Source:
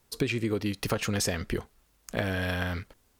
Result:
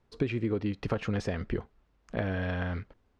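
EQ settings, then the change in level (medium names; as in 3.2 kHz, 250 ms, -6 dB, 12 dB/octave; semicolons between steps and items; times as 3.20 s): tape spacing loss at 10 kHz 30 dB; 0.0 dB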